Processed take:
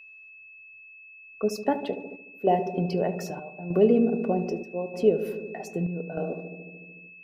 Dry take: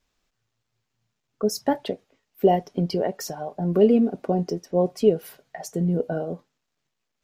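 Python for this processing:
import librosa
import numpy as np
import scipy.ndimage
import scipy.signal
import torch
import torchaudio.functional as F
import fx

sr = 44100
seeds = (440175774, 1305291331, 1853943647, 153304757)

y = fx.low_shelf(x, sr, hz=210.0, db=-6.5)
y = fx.echo_filtered(y, sr, ms=74, feedback_pct=84, hz=940.0, wet_db=-10.0)
y = fx.chopper(y, sr, hz=0.81, depth_pct=60, duty_pct=75)
y = fx.high_shelf(y, sr, hz=3200.0, db=-10.0)
y = y + 10.0 ** (-45.0 / 20.0) * np.sin(2.0 * np.pi * 2600.0 * np.arange(len(y)) / sr)
y = F.gain(torch.from_numpy(y), -1.0).numpy()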